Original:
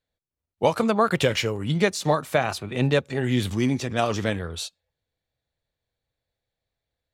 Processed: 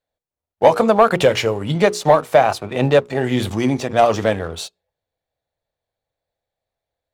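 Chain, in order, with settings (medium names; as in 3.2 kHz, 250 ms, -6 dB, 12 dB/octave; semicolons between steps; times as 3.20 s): peaking EQ 690 Hz +10 dB 1.5 oct; hum notches 60/120/180/240/300/360/420/480 Hz; waveshaping leveller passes 1; trim -1 dB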